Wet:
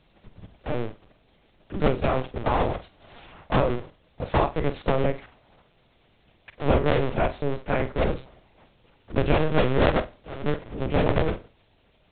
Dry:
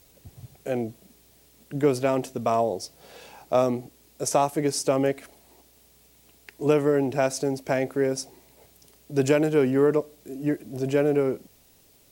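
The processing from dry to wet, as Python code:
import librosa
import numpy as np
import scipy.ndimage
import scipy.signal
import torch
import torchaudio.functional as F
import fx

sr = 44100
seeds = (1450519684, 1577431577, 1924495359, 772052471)

y = fx.cycle_switch(x, sr, every=2, mode='inverted')
y = fx.lpc_vocoder(y, sr, seeds[0], excitation='pitch_kept', order=10)
y = fx.room_flutter(y, sr, wall_m=8.0, rt60_s=0.22)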